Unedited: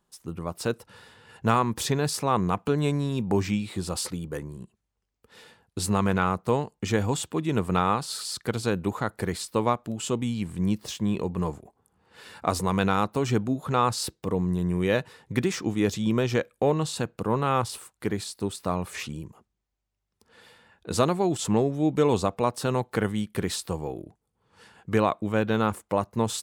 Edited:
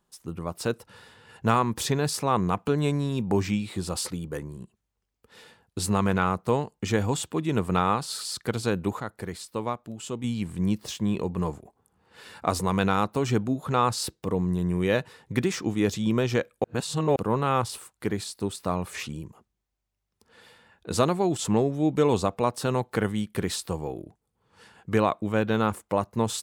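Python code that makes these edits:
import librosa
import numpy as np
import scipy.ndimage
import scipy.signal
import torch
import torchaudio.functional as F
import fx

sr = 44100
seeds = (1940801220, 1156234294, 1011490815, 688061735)

y = fx.edit(x, sr, fx.clip_gain(start_s=9.0, length_s=1.24, db=-6.0),
    fx.reverse_span(start_s=16.64, length_s=0.52), tone=tone)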